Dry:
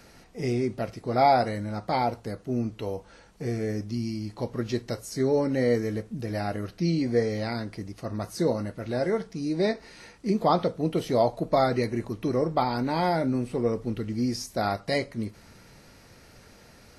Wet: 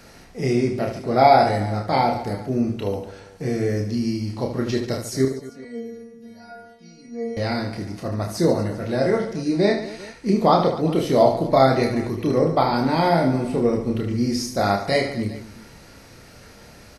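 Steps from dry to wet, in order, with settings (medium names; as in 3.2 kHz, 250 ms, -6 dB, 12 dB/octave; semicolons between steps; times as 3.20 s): 5.25–7.37 s: inharmonic resonator 230 Hz, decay 0.75 s, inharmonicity 0.002; reverse bouncing-ball echo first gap 30 ms, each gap 1.5×, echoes 5; trim +4.5 dB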